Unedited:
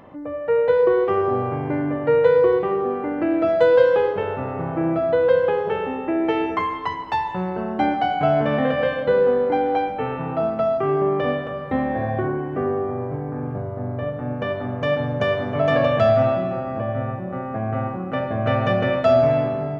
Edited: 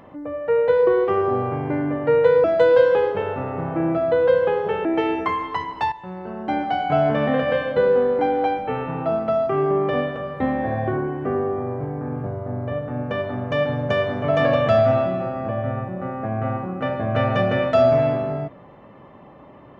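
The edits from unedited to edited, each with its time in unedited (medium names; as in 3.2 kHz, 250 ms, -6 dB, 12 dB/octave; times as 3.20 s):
2.44–3.45 s: delete
5.86–6.16 s: delete
7.23–8.29 s: fade in linear, from -12.5 dB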